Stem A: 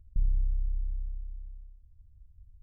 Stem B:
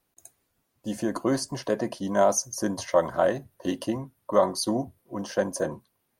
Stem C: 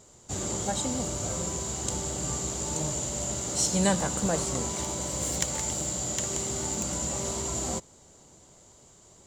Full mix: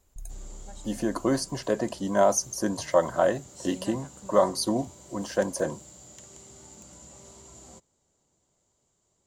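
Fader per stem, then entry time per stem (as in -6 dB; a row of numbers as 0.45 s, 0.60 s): -14.5 dB, 0.0 dB, -18.0 dB; 0.00 s, 0.00 s, 0.00 s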